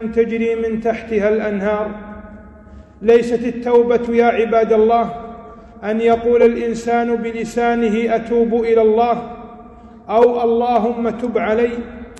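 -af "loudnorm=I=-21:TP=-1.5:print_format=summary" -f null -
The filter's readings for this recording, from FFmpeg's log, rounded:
Input Integrated:    -16.3 LUFS
Input True Peak:      -3.0 dBTP
Input LRA:             2.7 LU
Input Threshold:     -27.2 LUFS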